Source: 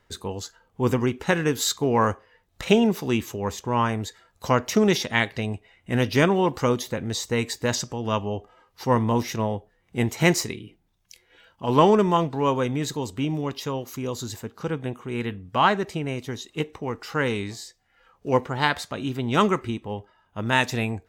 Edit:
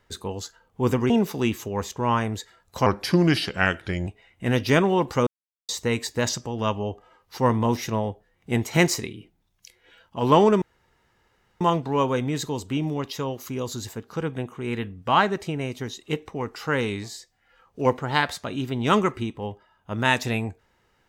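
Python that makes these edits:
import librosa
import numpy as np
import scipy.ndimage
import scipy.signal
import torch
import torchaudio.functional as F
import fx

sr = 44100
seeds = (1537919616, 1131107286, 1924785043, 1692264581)

y = fx.edit(x, sr, fx.cut(start_s=1.1, length_s=1.68),
    fx.speed_span(start_s=4.54, length_s=0.99, speed=0.82),
    fx.silence(start_s=6.73, length_s=0.42),
    fx.insert_room_tone(at_s=12.08, length_s=0.99), tone=tone)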